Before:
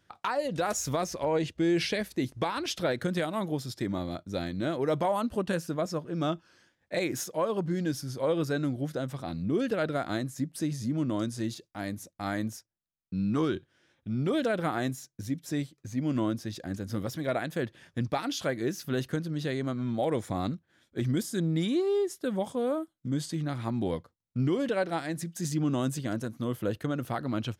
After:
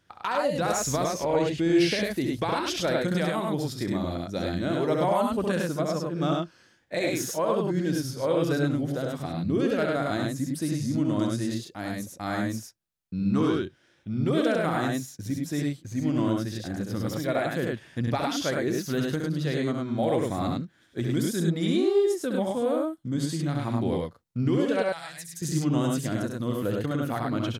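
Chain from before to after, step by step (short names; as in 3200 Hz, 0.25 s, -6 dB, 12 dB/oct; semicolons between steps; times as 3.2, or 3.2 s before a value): 24.82–25.42 passive tone stack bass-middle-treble 10-0-10; loudspeakers at several distances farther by 23 m -5 dB, 35 m -2 dB; gain +1 dB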